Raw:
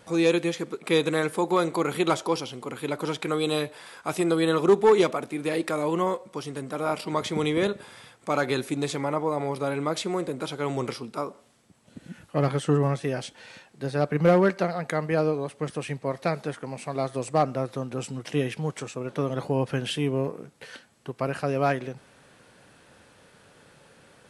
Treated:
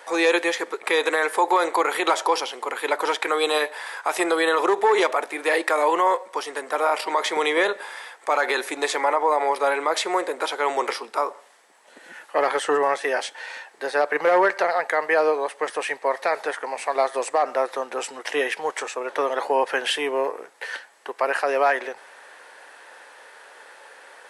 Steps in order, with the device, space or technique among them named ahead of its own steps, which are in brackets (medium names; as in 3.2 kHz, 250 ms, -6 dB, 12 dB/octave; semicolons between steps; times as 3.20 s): laptop speaker (high-pass 420 Hz 24 dB/octave; peaking EQ 900 Hz +7.5 dB 0.6 oct; peaking EQ 1.8 kHz +9 dB 0.5 oct; peak limiter -16 dBFS, peak gain reduction 11 dB); trim +6 dB